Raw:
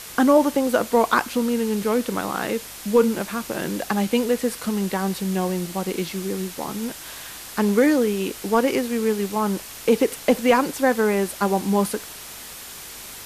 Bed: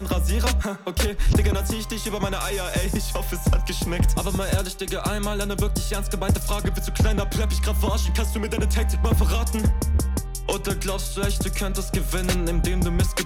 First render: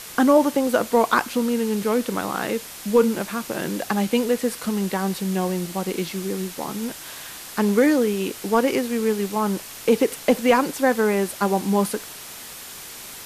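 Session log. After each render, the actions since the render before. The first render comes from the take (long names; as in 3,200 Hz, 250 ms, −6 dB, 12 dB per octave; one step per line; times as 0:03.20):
hum removal 50 Hz, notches 2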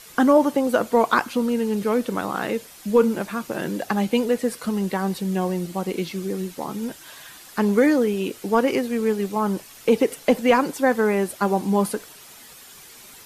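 broadband denoise 9 dB, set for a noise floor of −38 dBFS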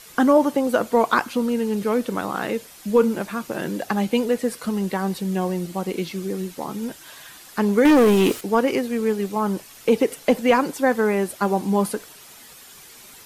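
0:07.85–0:08.41: leveller curve on the samples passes 3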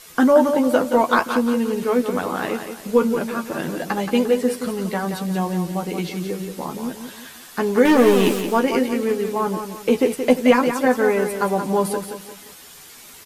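double-tracking delay 12 ms −5 dB
repeating echo 175 ms, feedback 39%, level −8 dB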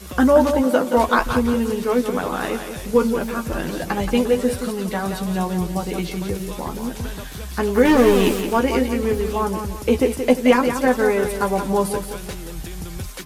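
mix in bed −10 dB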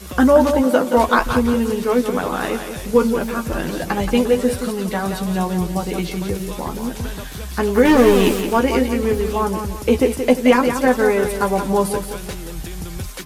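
level +2 dB
brickwall limiter −2 dBFS, peak gain reduction 1.5 dB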